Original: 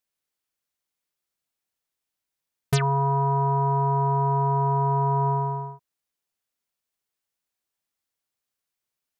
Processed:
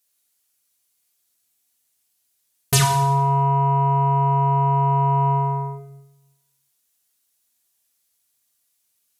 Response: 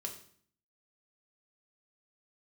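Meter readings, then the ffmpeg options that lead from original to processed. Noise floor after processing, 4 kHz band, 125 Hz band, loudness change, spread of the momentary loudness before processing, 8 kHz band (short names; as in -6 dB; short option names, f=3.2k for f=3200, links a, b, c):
-70 dBFS, +11.5 dB, +4.0 dB, +4.0 dB, 4 LU, n/a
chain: -filter_complex "[0:a]acontrast=87,crystalizer=i=3.5:c=0[a];[1:a]atrim=start_sample=2205,asetrate=26901,aresample=44100[b];[a][b]afir=irnorm=-1:irlink=0,volume=-4.5dB"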